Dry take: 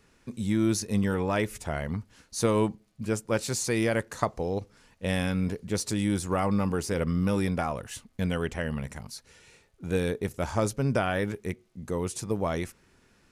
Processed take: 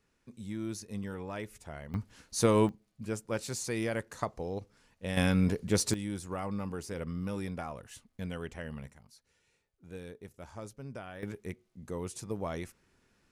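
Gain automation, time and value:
-12.5 dB
from 1.94 s -0.5 dB
from 2.69 s -7 dB
from 5.17 s +1.5 dB
from 5.94 s -10 dB
from 8.9 s -17.5 dB
from 11.23 s -7.5 dB

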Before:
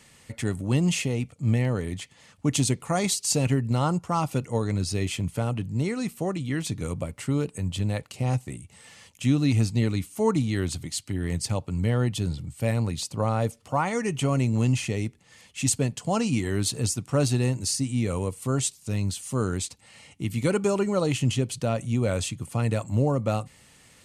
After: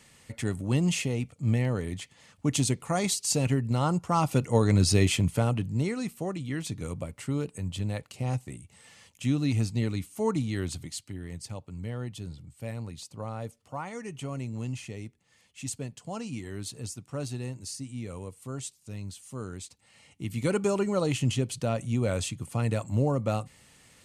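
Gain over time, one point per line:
3.78 s -2.5 dB
4.91 s +6 dB
6.17 s -4.5 dB
10.83 s -4.5 dB
11.28 s -11.5 dB
19.6 s -11.5 dB
20.55 s -2.5 dB

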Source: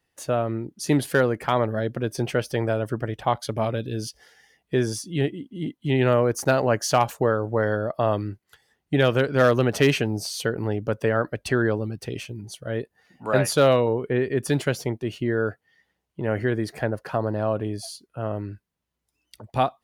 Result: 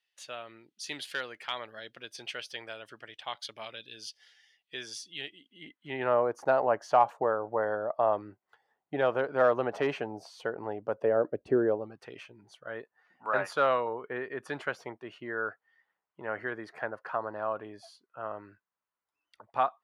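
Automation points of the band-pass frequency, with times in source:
band-pass, Q 1.7
5.41 s 3300 Hz
6.16 s 840 Hz
10.87 s 840 Hz
11.47 s 330 Hz
12.01 s 1200 Hz

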